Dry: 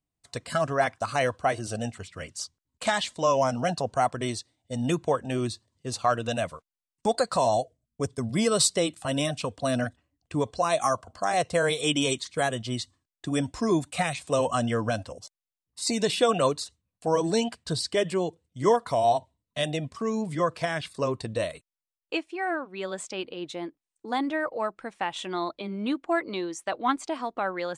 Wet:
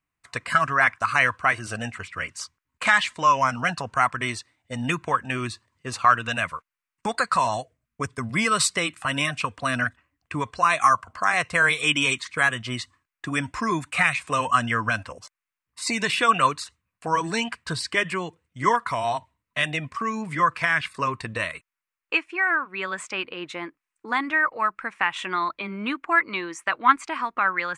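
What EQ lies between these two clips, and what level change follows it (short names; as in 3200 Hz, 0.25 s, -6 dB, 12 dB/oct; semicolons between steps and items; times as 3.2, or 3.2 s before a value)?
band shelf 1600 Hz +13 dB; dynamic EQ 530 Hz, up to -7 dB, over -33 dBFS, Q 0.85; 0.0 dB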